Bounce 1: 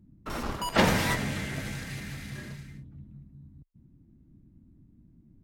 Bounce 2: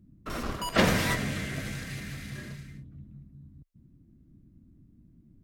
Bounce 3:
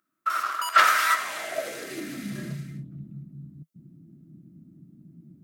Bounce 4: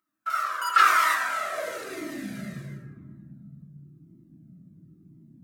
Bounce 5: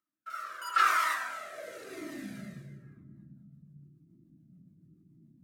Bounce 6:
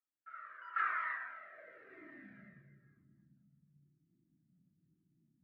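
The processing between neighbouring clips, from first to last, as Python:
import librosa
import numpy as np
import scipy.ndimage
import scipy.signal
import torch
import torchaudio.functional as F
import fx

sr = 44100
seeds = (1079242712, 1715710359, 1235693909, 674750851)

y1 = fx.notch(x, sr, hz=870.0, q=5.6)
y2 = fx.high_shelf(y1, sr, hz=6800.0, db=7.5)
y2 = fx.filter_sweep_highpass(y2, sr, from_hz=1300.0, to_hz=160.0, start_s=1.11, end_s=2.45, q=4.2)
y2 = fx.small_body(y2, sr, hz=(340.0, 630.0, 1300.0), ring_ms=35, db=8)
y3 = fx.rev_plate(y2, sr, seeds[0], rt60_s=1.7, hf_ratio=0.3, predelay_ms=0, drr_db=-1.5)
y3 = fx.comb_cascade(y3, sr, direction='falling', hz=0.96)
y4 = fx.rotary_switch(y3, sr, hz=0.8, then_hz=7.0, switch_at_s=2.59)
y4 = y4 * 10.0 ** (-6.0 / 20.0)
y5 = fx.ladder_lowpass(y4, sr, hz=2100.0, resonance_pct=60)
y5 = y5 * 10.0 ** (-5.0 / 20.0)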